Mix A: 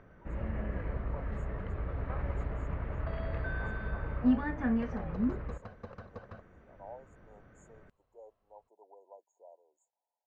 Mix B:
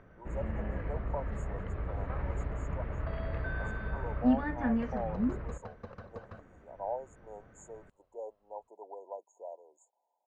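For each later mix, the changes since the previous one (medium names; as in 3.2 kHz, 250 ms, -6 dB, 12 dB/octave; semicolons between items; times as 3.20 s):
speech +11.0 dB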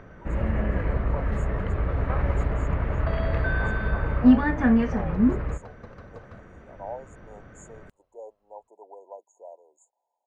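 first sound +10.5 dB; master: add treble shelf 8 kHz +11 dB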